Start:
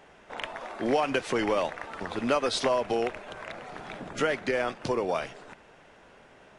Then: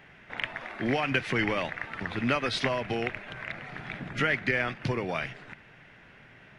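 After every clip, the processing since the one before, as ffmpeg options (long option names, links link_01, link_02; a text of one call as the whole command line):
ffmpeg -i in.wav -af "equalizer=frequency=125:width_type=o:width=1:gain=10,equalizer=frequency=500:width_type=o:width=1:gain=-6,equalizer=frequency=1000:width_type=o:width=1:gain=-5,equalizer=frequency=2000:width_type=o:width=1:gain=9,equalizer=frequency=8000:width_type=o:width=1:gain=-11" out.wav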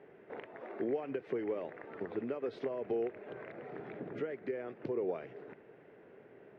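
ffmpeg -i in.wav -af "acompressor=threshold=-34dB:ratio=6,bandpass=frequency=420:width_type=q:width=3.6:csg=0,volume=9.5dB" out.wav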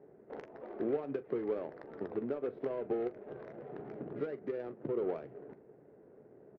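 ffmpeg -i in.wav -filter_complex "[0:a]adynamicsmooth=sensitivity=4:basefreq=710,asplit=2[link_01][link_02];[link_02]aecho=0:1:14|42:0.224|0.158[link_03];[link_01][link_03]amix=inputs=2:normalize=0,volume=1dB" out.wav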